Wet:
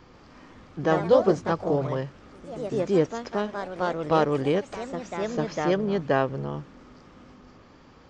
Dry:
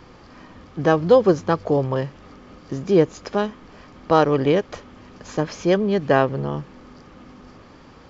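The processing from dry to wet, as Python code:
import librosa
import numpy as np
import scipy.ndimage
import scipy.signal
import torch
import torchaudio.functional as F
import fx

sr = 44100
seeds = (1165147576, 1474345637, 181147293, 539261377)

y = fx.echo_pitch(x, sr, ms=140, semitones=2, count=3, db_per_echo=-6.0)
y = F.gain(torch.from_numpy(y), -6.0).numpy()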